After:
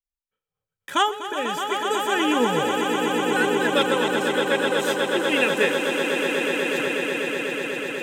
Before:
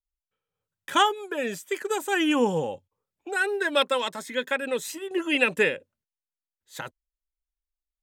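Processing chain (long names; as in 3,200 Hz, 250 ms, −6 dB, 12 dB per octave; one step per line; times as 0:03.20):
noise reduction from a noise print of the clip's start 6 dB
on a send: echo that builds up and dies away 123 ms, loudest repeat 8, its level −8 dB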